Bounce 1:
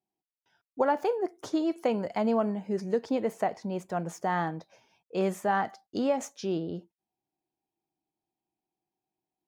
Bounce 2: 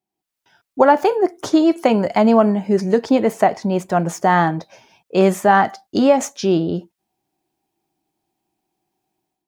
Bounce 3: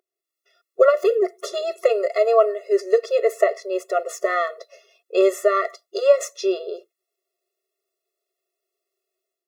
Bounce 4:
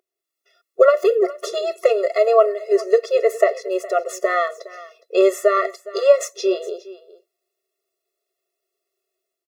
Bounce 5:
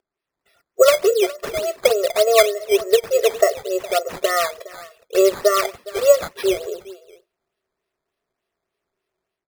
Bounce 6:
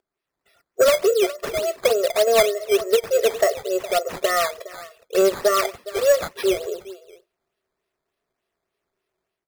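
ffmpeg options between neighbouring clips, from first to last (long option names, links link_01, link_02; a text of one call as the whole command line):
ffmpeg -i in.wav -af "bandreject=frequency=480:width=12,dynaudnorm=framelen=100:gausssize=5:maxgain=10dB,volume=4dB" out.wav
ffmpeg -i in.wav -af "aeval=exprs='val(0)+0.00447*(sin(2*PI*60*n/s)+sin(2*PI*2*60*n/s)/2+sin(2*PI*3*60*n/s)/3+sin(2*PI*4*60*n/s)/4+sin(2*PI*5*60*n/s)/5)':channel_layout=same,afftfilt=real='re*eq(mod(floor(b*sr/1024/360),2),1)':imag='im*eq(mod(floor(b*sr/1024/360),2),1)':win_size=1024:overlap=0.75" out.wav
ffmpeg -i in.wav -af "aecho=1:1:413:0.119,volume=2dB" out.wav
ffmpeg -i in.wav -af "acrusher=samples=11:mix=1:aa=0.000001:lfo=1:lforange=11:lforate=3.4" out.wav
ffmpeg -i in.wav -af "asoftclip=type=tanh:threshold=-9.5dB" out.wav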